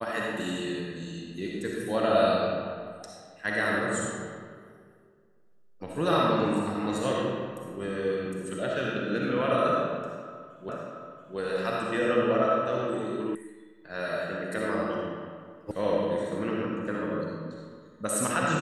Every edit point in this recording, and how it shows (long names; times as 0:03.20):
0:10.69: the same again, the last 0.68 s
0:13.35: cut off before it has died away
0:15.71: cut off before it has died away